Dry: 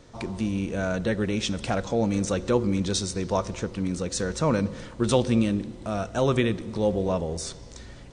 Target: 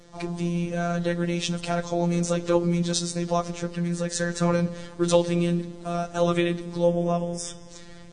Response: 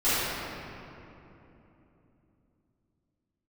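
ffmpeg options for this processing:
-filter_complex "[0:a]asettb=1/sr,asplit=3[link_01][link_02][link_03];[link_01]atrim=end=3.754[link_04];[link_02]atrim=start=3.75:end=4.54,asetpts=PTS-STARTPTS,afade=type=in:duration=0.004:curve=qsin,afade=type=out:start_time=0.786:duration=0.004:curve=qsin,equalizer=frequency=1700:width=5.9:gain=11.5[link_05];[link_03]atrim=start=4.536[link_06];[link_04][link_05]acrossfade=duration=0.004:curve1=hsin:curve2=qsin[link_07];[link_07][link_06]acrossfade=duration=0.004:curve1=qsin:curve2=hsin,asettb=1/sr,asplit=3[link_08][link_09][link_10];[link_08]atrim=end=6.834[link_11];[link_09]atrim=start=6.83:end=7.7,asetpts=PTS-STARTPTS,afade=type=in:duration=0.004:curve=qsin,afade=type=out:start_time=0.866:duration=0.004:curve=qsin,asuperstop=centerf=4200:order=20:qfactor=3.5[link_12];[link_10]atrim=start=7.696[link_13];[link_11][link_12]acrossfade=duration=0.004:curve1=hsin:curve2=qsin[link_14];[link_14][link_13]acrossfade=duration=0.004:curve1=qsin:curve2=hsin,afftfilt=real='hypot(re,im)*cos(PI*b)':imag='0':win_size=1024:overlap=0.75,volume=4dB" -ar 48000 -c:a libvorbis -b:a 32k

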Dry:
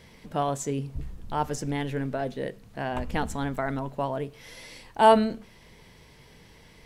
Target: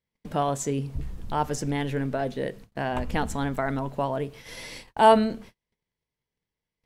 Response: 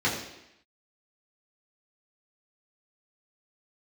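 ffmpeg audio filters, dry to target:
-filter_complex "[0:a]agate=range=-41dB:threshold=-46dB:ratio=16:detection=peak,asplit=2[link_01][link_02];[link_02]acompressor=threshold=-37dB:ratio=6,volume=-1.5dB[link_03];[link_01][link_03]amix=inputs=2:normalize=0"

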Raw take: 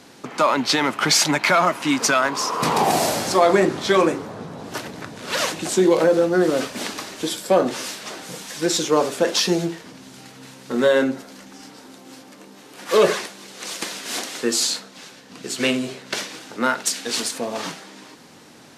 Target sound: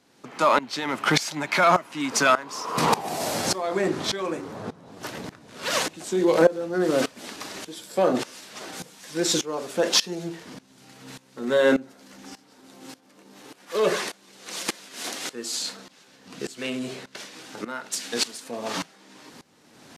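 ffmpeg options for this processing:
ffmpeg -i in.wav -af "atempo=0.94,aeval=exprs='val(0)*pow(10,-19*if(lt(mod(-1.7*n/s,1),2*abs(-1.7)/1000),1-mod(-1.7*n/s,1)/(2*abs(-1.7)/1000),(mod(-1.7*n/s,1)-2*abs(-1.7)/1000)/(1-2*abs(-1.7)/1000))/20)':channel_layout=same,volume=2dB" out.wav

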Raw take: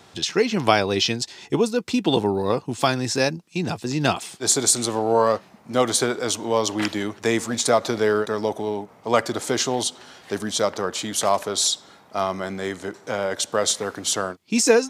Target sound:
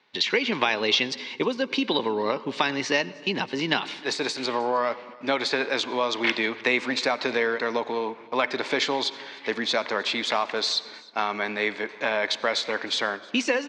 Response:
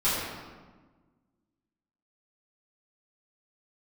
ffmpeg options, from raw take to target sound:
-filter_complex "[0:a]agate=range=-17dB:threshold=-47dB:ratio=16:detection=peak,acompressor=threshold=-20dB:ratio=6,aecho=1:1:338:0.0631,asplit=2[link_01][link_02];[1:a]atrim=start_sample=2205,adelay=92[link_03];[link_02][link_03]afir=irnorm=-1:irlink=0,volume=-31.5dB[link_04];[link_01][link_04]amix=inputs=2:normalize=0,asetrate=48000,aresample=44100,highpass=350,equalizer=frequency=350:width_type=q:width=4:gain=-5,equalizer=frequency=500:width_type=q:width=4:gain=-6,equalizer=frequency=720:width_type=q:width=4:gain=-9,equalizer=frequency=1300:width_type=q:width=4:gain=-6,equalizer=frequency=2200:width_type=q:width=4:gain=5,lowpass=frequency=4100:width=0.5412,lowpass=frequency=4100:width=1.3066,volume=6dB"

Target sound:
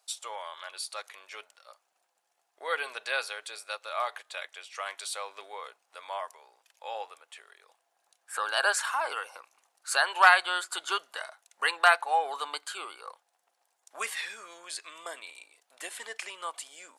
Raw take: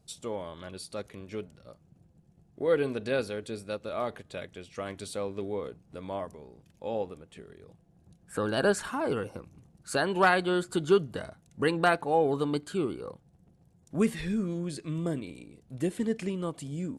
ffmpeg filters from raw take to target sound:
ffmpeg -i in.wav -af "highpass=frequency=830:width=0.5412,highpass=frequency=830:width=1.3066,volume=6.5dB" out.wav

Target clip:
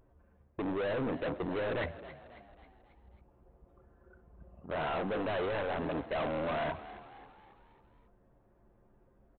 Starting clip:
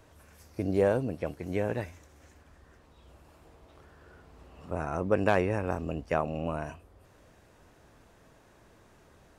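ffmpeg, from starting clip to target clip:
ffmpeg -i in.wav -filter_complex "[0:a]bandreject=frequency=254.1:width_type=h:width=4,bandreject=frequency=508.2:width_type=h:width=4,bandreject=frequency=762.3:width_type=h:width=4,bandreject=frequency=1016.4:width_type=h:width=4,bandreject=frequency=1270.5:width_type=h:width=4,bandreject=frequency=1524.6:width_type=h:width=4,bandreject=frequency=1778.7:width_type=h:width=4,bandreject=frequency=2032.8:width_type=h:width=4,bandreject=frequency=2286.9:width_type=h:width=4,bandreject=frequency=2541:width_type=h:width=4,bandreject=frequency=2795.1:width_type=h:width=4,bandreject=frequency=3049.2:width_type=h:width=4,bandreject=frequency=3303.3:width_type=h:width=4,bandreject=frequency=3557.4:width_type=h:width=4,bandreject=frequency=3811.5:width_type=h:width=4,bandreject=frequency=4065.6:width_type=h:width=4,bandreject=frequency=4319.7:width_type=h:width=4,bandreject=frequency=4573.8:width_type=h:width=4,bandreject=frequency=4827.9:width_type=h:width=4,bandreject=frequency=5082:width_type=h:width=4,bandreject=frequency=5336.1:width_type=h:width=4,bandreject=frequency=5590.2:width_type=h:width=4,bandreject=frequency=5844.3:width_type=h:width=4,bandreject=frequency=6098.4:width_type=h:width=4,bandreject=frequency=6352.5:width_type=h:width=4,bandreject=frequency=6606.6:width_type=h:width=4,bandreject=frequency=6860.7:width_type=h:width=4,bandreject=frequency=7114.8:width_type=h:width=4,bandreject=frequency=7368.9:width_type=h:width=4,anlmdn=0.631,areverse,acompressor=threshold=-36dB:ratio=8,areverse,asplit=2[link_01][link_02];[link_02]highpass=frequency=720:poles=1,volume=25dB,asoftclip=type=tanh:threshold=-26.5dB[link_03];[link_01][link_03]amix=inputs=2:normalize=0,lowpass=frequency=1500:poles=1,volume=-6dB,aresample=8000,asoftclip=type=hard:threshold=-37.5dB,aresample=44100,asplit=6[link_04][link_05][link_06][link_07][link_08][link_09];[link_05]adelay=271,afreqshift=60,volume=-15dB[link_10];[link_06]adelay=542,afreqshift=120,volume=-21dB[link_11];[link_07]adelay=813,afreqshift=180,volume=-27dB[link_12];[link_08]adelay=1084,afreqshift=240,volume=-33.1dB[link_13];[link_09]adelay=1355,afreqshift=300,volume=-39.1dB[link_14];[link_04][link_10][link_11][link_12][link_13][link_14]amix=inputs=6:normalize=0,volume=6dB" out.wav

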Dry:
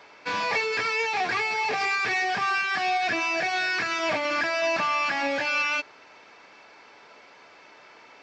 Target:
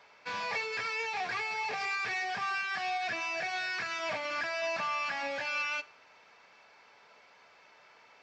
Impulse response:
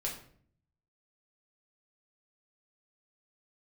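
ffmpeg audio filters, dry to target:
-filter_complex "[0:a]equalizer=frequency=310:width_type=o:width=0.71:gain=-8.5,asplit=2[link_01][link_02];[1:a]atrim=start_sample=2205,adelay=45[link_03];[link_02][link_03]afir=irnorm=-1:irlink=0,volume=-20.5dB[link_04];[link_01][link_04]amix=inputs=2:normalize=0,volume=-8dB"

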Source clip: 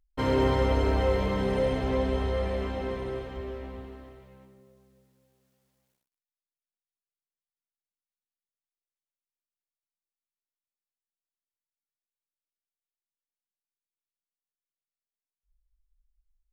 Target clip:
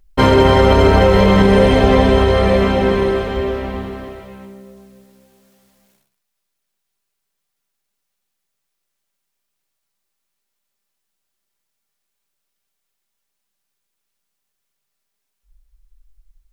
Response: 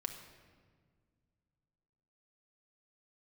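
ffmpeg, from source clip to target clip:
-filter_complex "[1:a]atrim=start_sample=2205,afade=type=out:start_time=0.16:duration=0.01,atrim=end_sample=7497[link_01];[0:a][link_01]afir=irnorm=-1:irlink=0,alimiter=level_in=20dB:limit=-1dB:release=50:level=0:latency=1,volume=-1dB"

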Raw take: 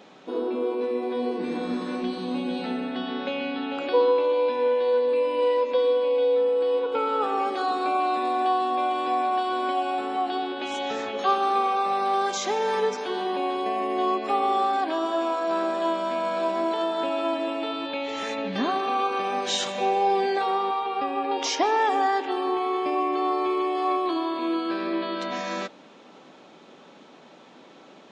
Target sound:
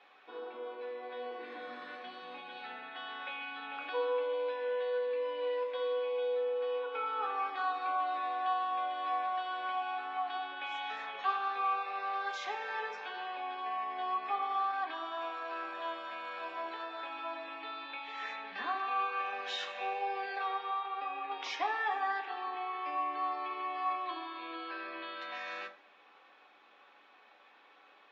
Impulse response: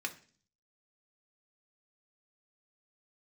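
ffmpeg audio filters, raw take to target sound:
-filter_complex "[0:a]highpass=780,lowpass=2900[link_01];[1:a]atrim=start_sample=2205[link_02];[link_01][link_02]afir=irnorm=-1:irlink=0,volume=-7dB"

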